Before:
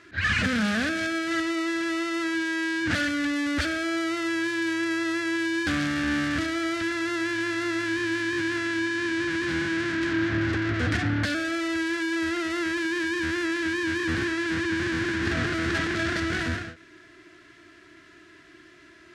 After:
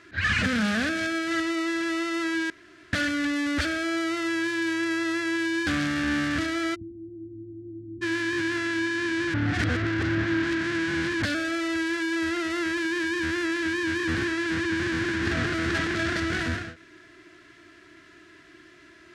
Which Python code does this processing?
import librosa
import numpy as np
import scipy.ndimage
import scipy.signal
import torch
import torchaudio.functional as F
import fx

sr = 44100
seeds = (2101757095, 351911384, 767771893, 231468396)

y = fx.cheby2_lowpass(x, sr, hz=1500.0, order=4, stop_db=80, at=(6.74, 8.01), fade=0.02)
y = fx.edit(y, sr, fx.room_tone_fill(start_s=2.5, length_s=0.43),
    fx.reverse_span(start_s=9.34, length_s=1.88), tone=tone)